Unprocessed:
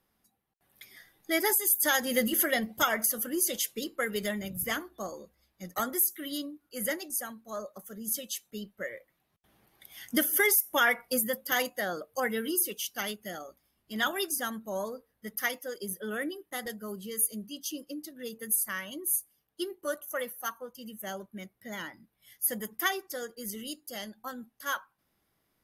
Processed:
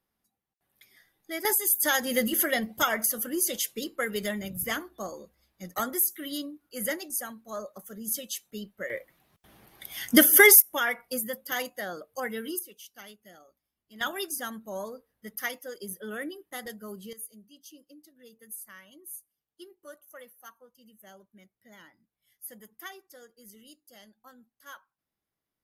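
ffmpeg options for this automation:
ffmpeg -i in.wav -af "asetnsamples=nb_out_samples=441:pad=0,asendcmd='1.45 volume volume 1dB;8.9 volume volume 9.5dB;10.62 volume volume -3dB;12.59 volume volume -13dB;14.01 volume volume -2dB;17.13 volume volume -13.5dB',volume=-7dB" out.wav

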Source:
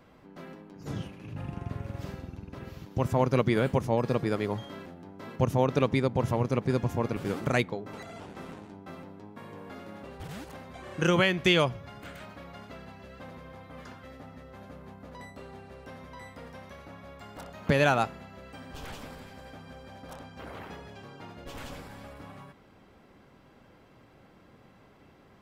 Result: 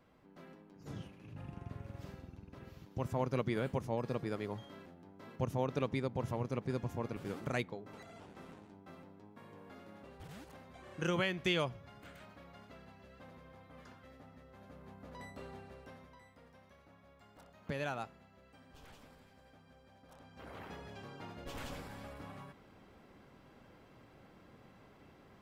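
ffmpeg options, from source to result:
ffmpeg -i in.wav -af "volume=9.5dB,afade=type=in:start_time=14.57:duration=0.88:silence=0.446684,afade=type=out:start_time=15.45:duration=0.77:silence=0.237137,afade=type=in:start_time=20.11:duration=0.85:silence=0.237137" out.wav

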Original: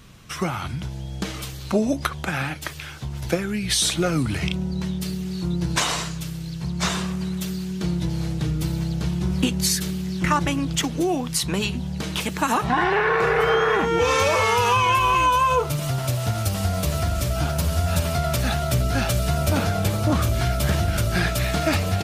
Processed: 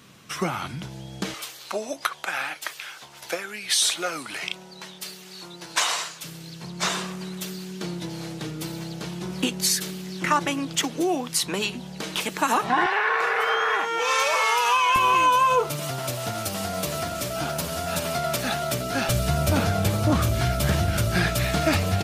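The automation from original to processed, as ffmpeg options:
ffmpeg -i in.wav -af "asetnsamples=nb_out_samples=441:pad=0,asendcmd='1.34 highpass f 660;6.24 highpass f 280;12.86 highpass f 750;14.96 highpass f 220;19.09 highpass f 70',highpass=170" out.wav

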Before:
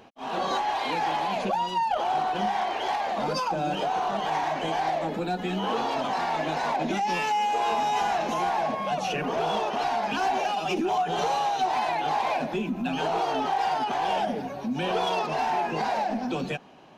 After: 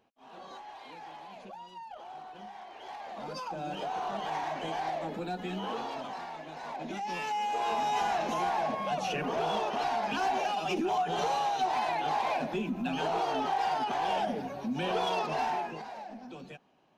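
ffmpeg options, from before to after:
ffmpeg -i in.wav -af "volume=5.5dB,afade=type=in:start_time=2.69:duration=1.39:silence=0.237137,afade=type=out:start_time=5.54:duration=0.92:silence=0.334965,afade=type=in:start_time=6.46:duration=1.49:silence=0.237137,afade=type=out:start_time=15.44:duration=0.4:silence=0.251189" out.wav

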